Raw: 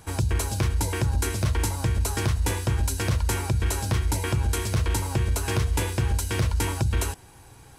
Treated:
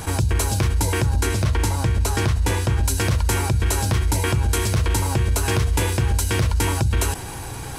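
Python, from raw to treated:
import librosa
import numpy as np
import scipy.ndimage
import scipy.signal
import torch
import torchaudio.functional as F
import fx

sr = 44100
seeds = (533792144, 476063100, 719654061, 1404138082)

y = fx.high_shelf(x, sr, hz=7400.0, db=-6.0, at=(1.2, 2.85))
y = fx.env_flatten(y, sr, amount_pct=50)
y = y * librosa.db_to_amplitude(3.0)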